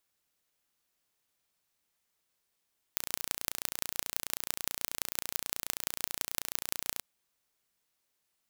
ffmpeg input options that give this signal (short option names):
-f lavfi -i "aevalsrc='0.794*eq(mod(n,1505),0)*(0.5+0.5*eq(mod(n,7525),0))':d=4.06:s=44100"